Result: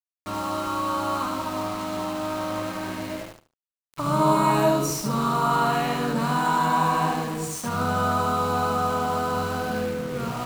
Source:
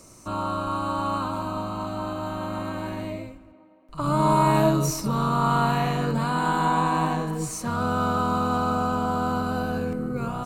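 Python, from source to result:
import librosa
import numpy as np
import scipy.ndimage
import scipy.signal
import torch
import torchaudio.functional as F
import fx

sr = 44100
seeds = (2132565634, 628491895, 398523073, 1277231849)

y = fx.low_shelf(x, sr, hz=70.0, db=-9.0)
y = np.where(np.abs(y) >= 10.0 ** (-34.0 / 20.0), y, 0.0)
y = fx.echo_feedback(y, sr, ms=74, feedback_pct=21, wet_db=-4.5)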